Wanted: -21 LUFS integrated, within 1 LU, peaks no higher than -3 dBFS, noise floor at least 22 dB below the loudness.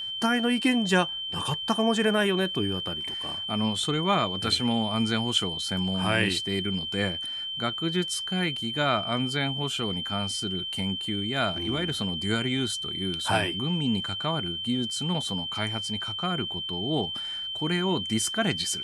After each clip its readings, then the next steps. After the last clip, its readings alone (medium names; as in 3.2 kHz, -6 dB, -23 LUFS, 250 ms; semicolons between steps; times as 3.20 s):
tick rate 16 per s; steady tone 3.1 kHz; tone level -31 dBFS; loudness -26.5 LUFS; peak level -8.5 dBFS; loudness target -21.0 LUFS
-> de-click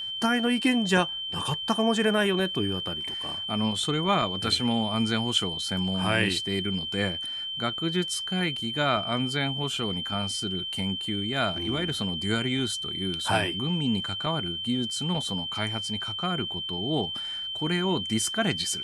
tick rate 0 per s; steady tone 3.1 kHz; tone level -31 dBFS
-> band-stop 3.1 kHz, Q 30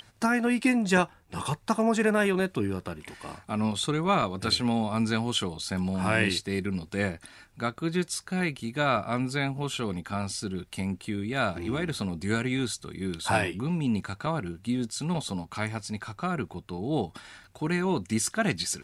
steady tone not found; loudness -28.5 LUFS; peak level -9.0 dBFS; loudness target -21.0 LUFS
-> trim +7.5 dB; peak limiter -3 dBFS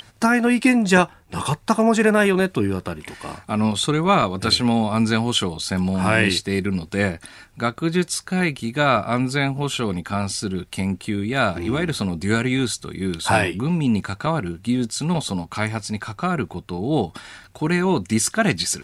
loudness -21.5 LUFS; peak level -3.0 dBFS; noise floor -51 dBFS